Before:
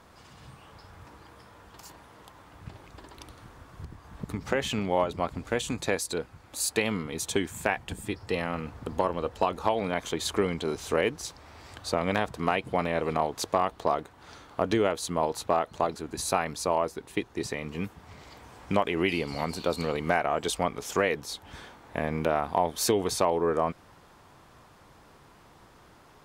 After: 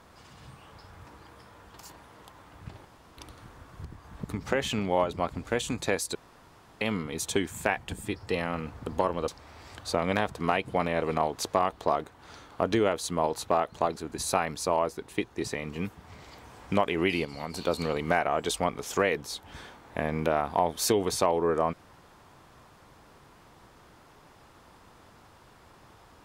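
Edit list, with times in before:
2.85–3.17 room tone
6.15–6.81 room tone
9.28–11.27 cut
19.24–19.53 gain -6 dB

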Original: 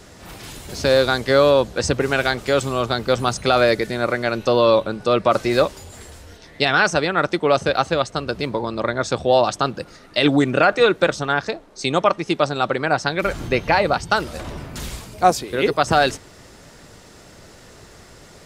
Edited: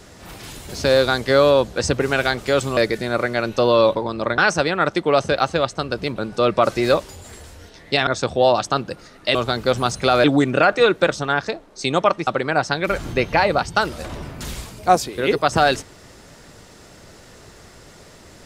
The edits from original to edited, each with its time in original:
2.77–3.66 move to 10.24
4.84–6.75 swap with 8.53–8.96
12.27–12.62 cut

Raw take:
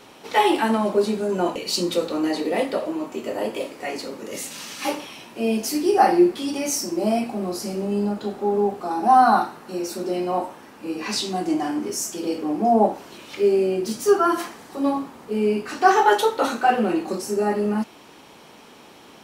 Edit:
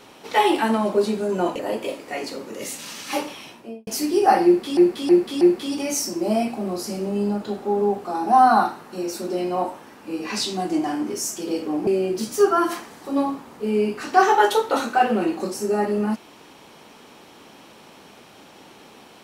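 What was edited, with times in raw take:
1.59–3.31 cut
5.17–5.59 studio fade out
6.17–6.49 loop, 4 plays
12.63–13.55 cut

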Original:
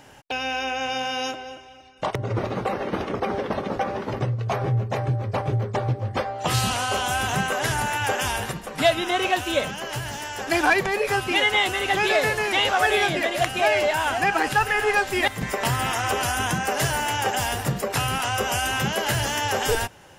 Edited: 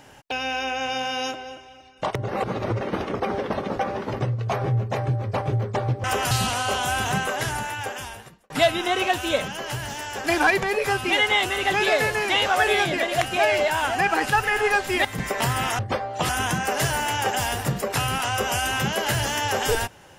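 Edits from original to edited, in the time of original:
2.28–2.81 reverse
6.04–6.54 swap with 16.02–16.29
7.35–8.73 fade out

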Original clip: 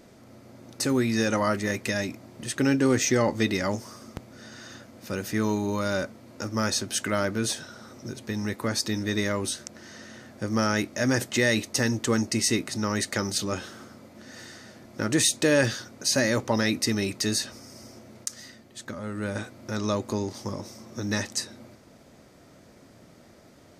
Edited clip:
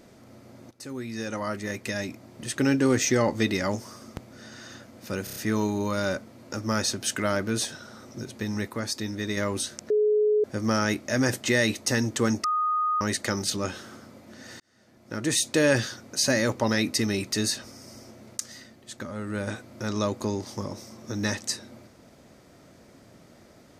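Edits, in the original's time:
0.71–2.56 fade in, from -17 dB
5.24 stutter 0.03 s, 5 plays
8.58–9.25 gain -3.5 dB
9.78–10.32 bleep 423 Hz -18.5 dBFS
12.32–12.89 bleep 1240 Hz -22 dBFS
14.48–15.49 fade in

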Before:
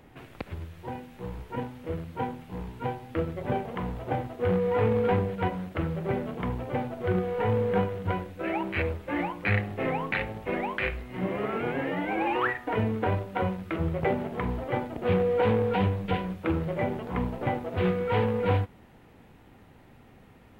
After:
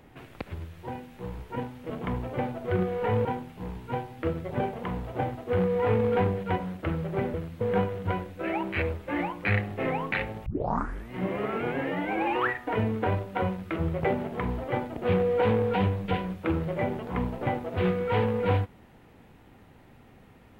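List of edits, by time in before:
1.9–2.17 swap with 6.26–7.61
10.46 tape start 0.65 s

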